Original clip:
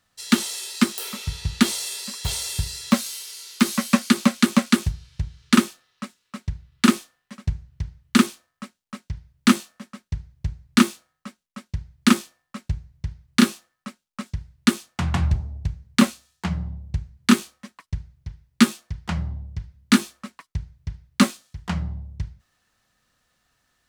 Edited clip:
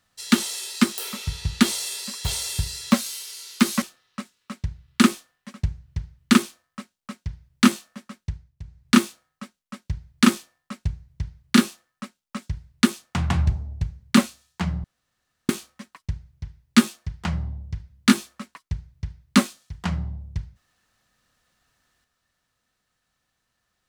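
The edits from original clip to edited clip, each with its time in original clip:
0:03.82–0:05.66: remove
0:10.07–0:10.80: duck −12 dB, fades 0.33 s
0:16.68–0:17.33: fill with room tone

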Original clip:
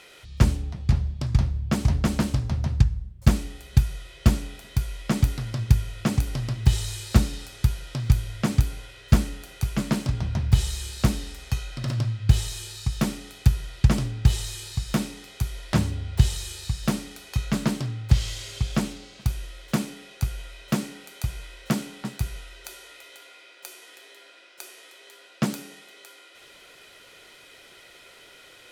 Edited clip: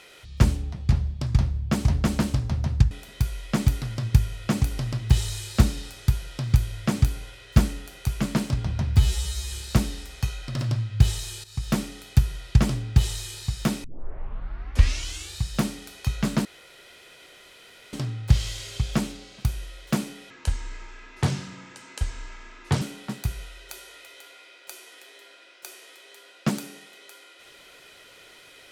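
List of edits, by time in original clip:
0:02.91–0:04.47: remove
0:10.53–0:10.80: time-stretch 2×
0:12.73–0:13.00: fade in, from −13 dB
0:15.13: tape start 1.55 s
0:17.74: splice in room tone 1.48 s
0:20.11–0:21.77: play speed 66%

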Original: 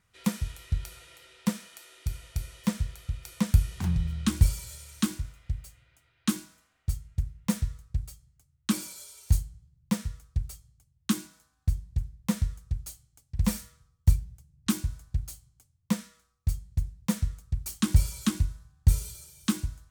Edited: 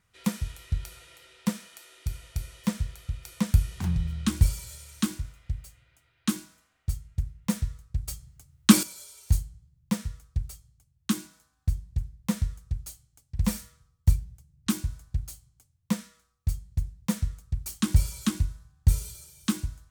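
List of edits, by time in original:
0:08.08–0:08.83: clip gain +11 dB

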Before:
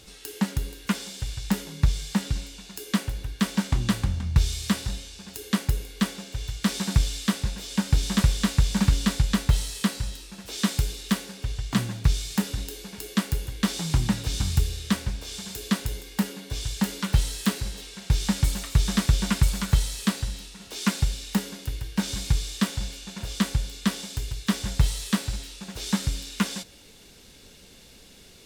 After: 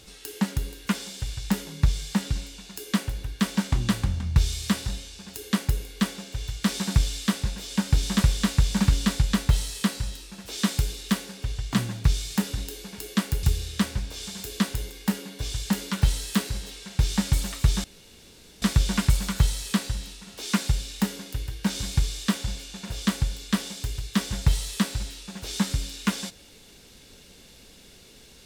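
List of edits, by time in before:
0:13.43–0:14.54: remove
0:18.95: splice in room tone 0.78 s

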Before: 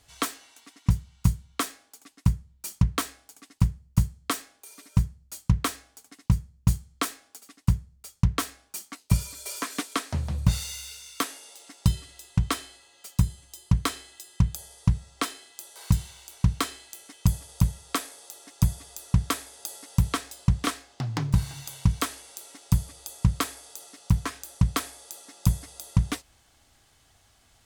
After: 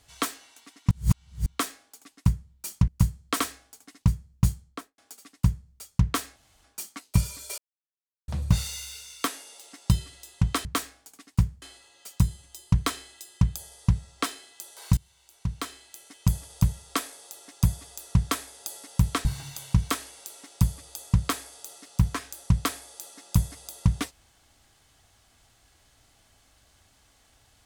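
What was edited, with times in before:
0:00.91–0:01.46: reverse
0:02.88–0:03.85: move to 0:12.61
0:04.37–0:05.64: remove
0:06.76–0:07.22: fade out and dull
0:08.60: splice in room tone 0.28 s
0:09.54–0:10.24: silence
0:15.96–0:17.41: fade in, from −22.5 dB
0:20.24–0:21.36: remove

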